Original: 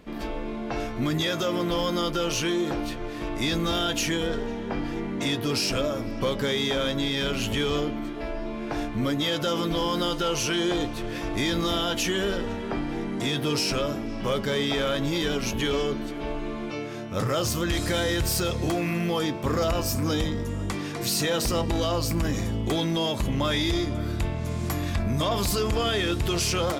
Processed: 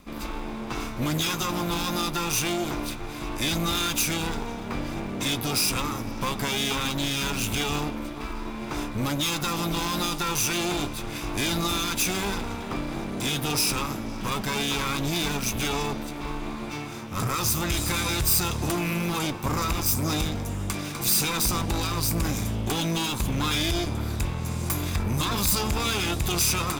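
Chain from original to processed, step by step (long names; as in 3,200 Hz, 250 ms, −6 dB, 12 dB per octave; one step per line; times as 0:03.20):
lower of the sound and its delayed copy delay 0.81 ms
high-shelf EQ 6,600 Hz +11.5 dB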